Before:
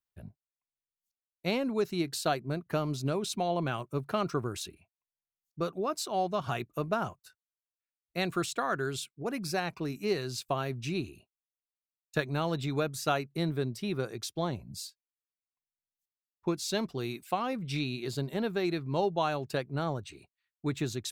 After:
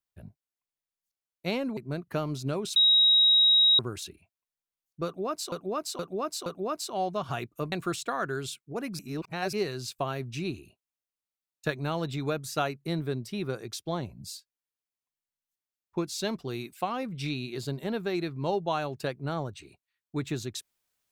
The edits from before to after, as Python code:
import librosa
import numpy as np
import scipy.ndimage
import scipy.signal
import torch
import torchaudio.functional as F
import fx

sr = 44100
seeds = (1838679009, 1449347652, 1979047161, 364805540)

y = fx.edit(x, sr, fx.cut(start_s=1.77, length_s=0.59),
    fx.bleep(start_s=3.35, length_s=1.03, hz=3810.0, db=-17.0),
    fx.repeat(start_s=5.64, length_s=0.47, count=4),
    fx.cut(start_s=6.9, length_s=1.32),
    fx.reverse_span(start_s=9.49, length_s=0.54), tone=tone)